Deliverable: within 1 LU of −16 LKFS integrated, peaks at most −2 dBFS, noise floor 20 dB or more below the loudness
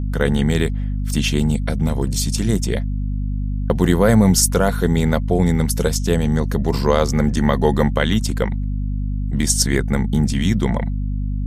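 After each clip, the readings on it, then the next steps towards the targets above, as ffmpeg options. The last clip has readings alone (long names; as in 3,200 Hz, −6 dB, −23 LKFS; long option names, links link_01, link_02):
mains hum 50 Hz; hum harmonics up to 250 Hz; level of the hum −19 dBFS; integrated loudness −19.0 LKFS; sample peak −1.5 dBFS; target loudness −16.0 LKFS
→ -af "bandreject=frequency=50:width_type=h:width=6,bandreject=frequency=100:width_type=h:width=6,bandreject=frequency=150:width_type=h:width=6,bandreject=frequency=200:width_type=h:width=6,bandreject=frequency=250:width_type=h:width=6"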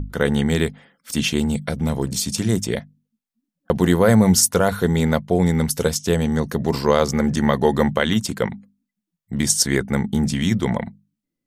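mains hum none found; integrated loudness −20.0 LKFS; sample peak −3.0 dBFS; target loudness −16.0 LKFS
→ -af "volume=4dB,alimiter=limit=-2dB:level=0:latency=1"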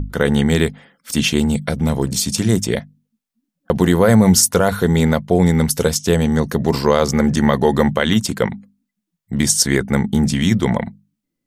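integrated loudness −16.5 LKFS; sample peak −2.0 dBFS; background noise floor −79 dBFS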